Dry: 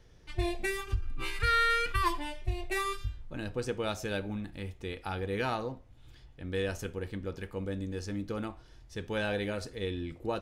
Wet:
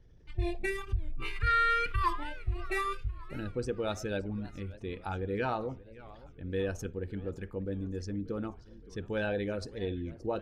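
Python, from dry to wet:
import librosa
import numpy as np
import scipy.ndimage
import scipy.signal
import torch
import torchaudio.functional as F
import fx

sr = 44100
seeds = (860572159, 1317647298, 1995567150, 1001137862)

y = fx.envelope_sharpen(x, sr, power=1.5)
y = fx.echo_warbled(y, sr, ms=576, feedback_pct=52, rate_hz=2.8, cents=214, wet_db=-19.5)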